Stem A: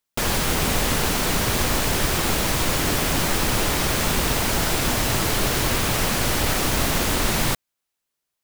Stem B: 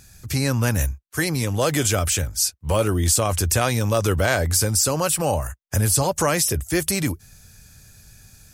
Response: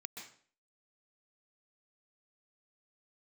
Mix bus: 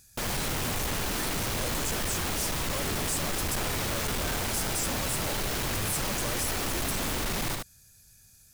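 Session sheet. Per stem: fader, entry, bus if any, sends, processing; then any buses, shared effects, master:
-5.0 dB, 0.00 s, no send, echo send -7 dB, dry
-14.0 dB, 0.00 s, no send, no echo send, high shelf 4400 Hz +10.5 dB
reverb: off
echo: echo 77 ms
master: soft clip -26.5 dBFS, distortion -9 dB

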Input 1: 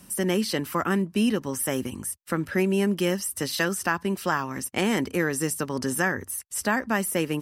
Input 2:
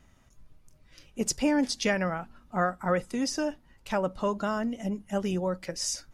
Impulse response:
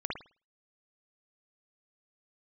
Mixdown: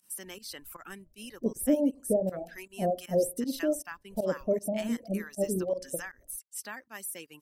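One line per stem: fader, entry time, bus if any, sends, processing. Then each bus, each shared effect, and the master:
-17.0 dB, 0.00 s, no send, tilt +3 dB/oct
+2.5 dB, 0.25 s, send -9 dB, elliptic low-pass 650 Hz, stop band 50 dB; low shelf 220 Hz -9.5 dB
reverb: on, pre-delay 52 ms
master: reverb removal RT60 1.1 s; pump 157 bpm, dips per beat 1, -19 dB, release 0.103 s

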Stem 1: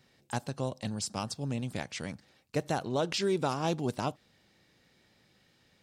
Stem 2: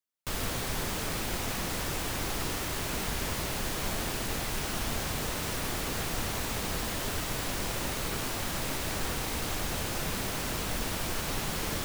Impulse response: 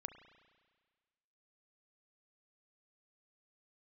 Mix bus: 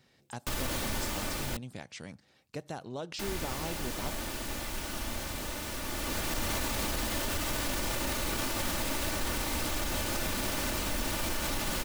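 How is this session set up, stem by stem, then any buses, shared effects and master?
-0.5 dB, 0.00 s, no send, compressor 1.5:1, threshold -50 dBFS, peak gain reduction 9 dB
+3.0 dB, 0.20 s, muted 1.57–3.19, no send, comb 3.4 ms, depth 45%; auto duck -8 dB, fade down 1.80 s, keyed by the first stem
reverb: off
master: limiter -22.5 dBFS, peak gain reduction 7.5 dB

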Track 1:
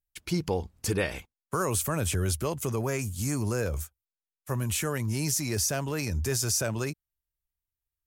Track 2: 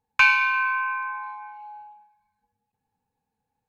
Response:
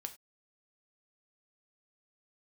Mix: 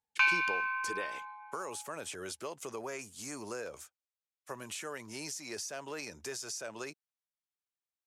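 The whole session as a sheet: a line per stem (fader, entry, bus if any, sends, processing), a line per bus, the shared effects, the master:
-4.0 dB, 0.00 s, no send, HPF 410 Hz 12 dB/oct; compressor, threshold -32 dBFS, peak gain reduction 8 dB
-12.5 dB, 0.00 s, no send, tilt shelf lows -4 dB, about 670 Hz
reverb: off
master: LPF 7900 Hz 12 dB/oct

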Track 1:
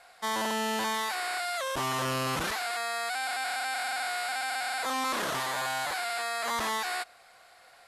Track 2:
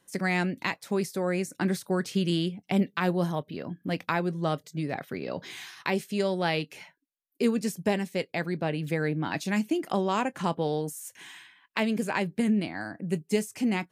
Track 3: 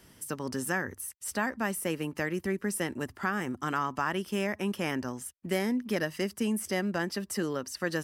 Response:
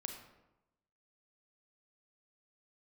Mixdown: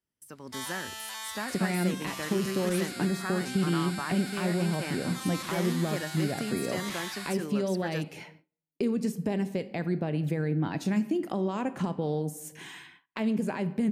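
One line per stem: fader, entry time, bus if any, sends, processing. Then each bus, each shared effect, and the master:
+0.5 dB, 0.30 s, send -19 dB, passive tone stack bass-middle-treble 10-0-10; upward expander 1.5:1, over -52 dBFS; auto duck -12 dB, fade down 0.80 s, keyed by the third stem
-4.5 dB, 1.40 s, send -3.5 dB, limiter -20 dBFS, peak gain reduction 6.5 dB; compressor 2:1, threshold -40 dBFS, peak gain reduction 9.5 dB; tilt shelf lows +5 dB, about 640 Hz
-12.5 dB, 0.00 s, no send, dry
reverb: on, RT60 0.95 s, pre-delay 30 ms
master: gate with hold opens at -49 dBFS; AGC gain up to 7 dB

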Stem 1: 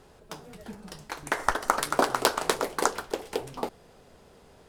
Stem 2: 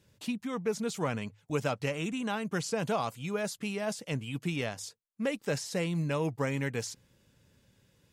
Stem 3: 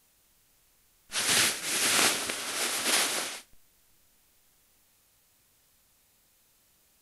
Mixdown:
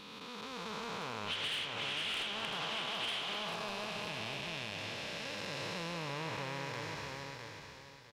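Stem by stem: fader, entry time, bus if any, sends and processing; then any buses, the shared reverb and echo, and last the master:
-19.0 dB, 0.70 s, no send, no echo send, limiter -17.5 dBFS, peak gain reduction 13.5 dB
+1.5 dB, 0.00 s, no send, echo send -7 dB, time blur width 0.863 s; graphic EQ 125/250/500/1000/4000/8000 Hz -7/-9/-4/+9/+12/-9 dB
-7.5 dB, 0.15 s, no send, no echo send, synth low-pass 3100 Hz, resonance Q 5.4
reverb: off
echo: feedback echo 0.654 s, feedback 28%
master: soft clip -22.5 dBFS, distortion -15 dB; compressor 10:1, threshold -35 dBFS, peak gain reduction 9.5 dB

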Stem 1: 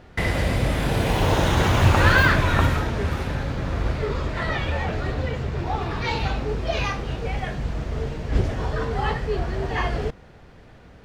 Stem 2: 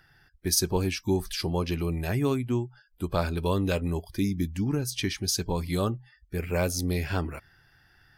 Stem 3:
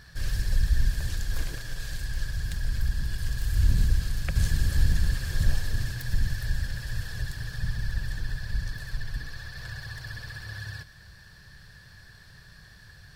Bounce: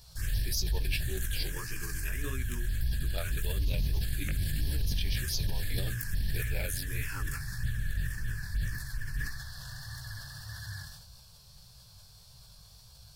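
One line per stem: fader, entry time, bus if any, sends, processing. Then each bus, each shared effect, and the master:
off
-1.5 dB, 0.00 s, bus A, no send, HPF 1200 Hz 6 dB/oct; high shelf 8800 Hz -4.5 dB; soft clip -10.5 dBFS, distortion -32 dB
-0.5 dB, 0.00 s, bus A, no send, dry
bus A: 0.0 dB, chorus 1.7 Hz, delay 15.5 ms, depth 6.7 ms; limiter -22.5 dBFS, peak gain reduction 9 dB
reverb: off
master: high shelf 4200 Hz +10.5 dB; envelope phaser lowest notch 270 Hz, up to 2400 Hz, full sweep at -22.5 dBFS; sustainer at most 46 dB/s

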